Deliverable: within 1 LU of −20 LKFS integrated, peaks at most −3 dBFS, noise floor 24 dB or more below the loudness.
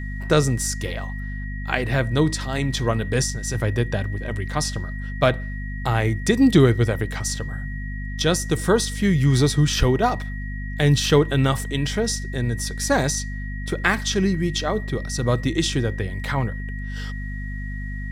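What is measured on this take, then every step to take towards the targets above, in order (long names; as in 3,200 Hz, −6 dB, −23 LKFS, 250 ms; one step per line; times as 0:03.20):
mains hum 50 Hz; hum harmonics up to 250 Hz; level of the hum −27 dBFS; interfering tone 1,900 Hz; level of the tone −37 dBFS; integrated loudness −22.5 LKFS; sample peak −3.0 dBFS; target loudness −20.0 LKFS
→ mains-hum notches 50/100/150/200/250 Hz
notch filter 1,900 Hz, Q 30
level +2.5 dB
brickwall limiter −3 dBFS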